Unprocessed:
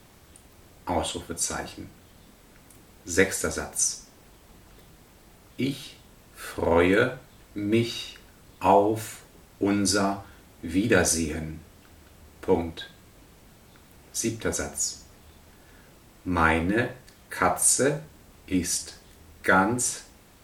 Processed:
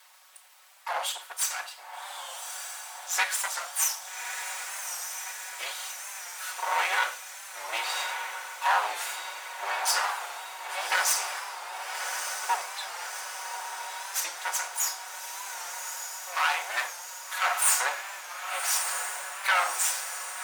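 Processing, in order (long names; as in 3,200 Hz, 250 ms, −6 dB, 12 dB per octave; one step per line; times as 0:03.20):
lower of the sound and its delayed copy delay 5.4 ms
inverse Chebyshev high-pass filter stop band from 240 Hz, stop band 60 dB
in parallel at −1 dB: brickwall limiter −20.5 dBFS, peak gain reduction 9.5 dB
on the sum: feedback delay with all-pass diffusion 1,195 ms, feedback 68%, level −6 dB
wow of a warped record 45 rpm, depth 100 cents
level −3 dB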